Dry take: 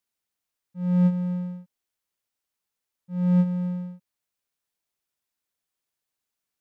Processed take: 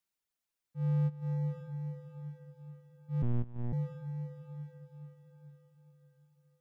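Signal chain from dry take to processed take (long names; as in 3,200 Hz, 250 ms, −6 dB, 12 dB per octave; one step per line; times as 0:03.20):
frequency shifter −31 Hz
reverb reduction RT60 0.64 s
feedback delay with all-pass diffusion 499 ms, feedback 53%, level −9 dB
downward compressor 4 to 1, threshold −25 dBFS, peak gain reduction 7 dB
0:03.22–0:03.73: one-pitch LPC vocoder at 8 kHz 120 Hz
level −3 dB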